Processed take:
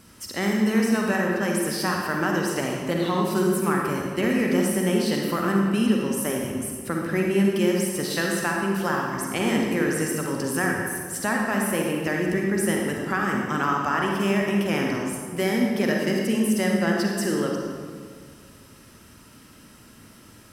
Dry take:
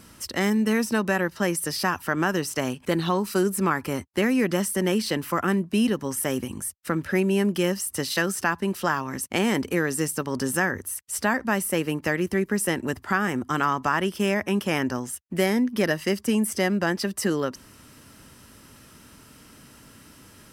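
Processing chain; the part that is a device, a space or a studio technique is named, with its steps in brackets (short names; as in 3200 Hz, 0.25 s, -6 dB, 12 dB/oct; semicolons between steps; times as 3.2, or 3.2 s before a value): stairwell (reverb RT60 1.9 s, pre-delay 38 ms, DRR -0.5 dB); gain -3 dB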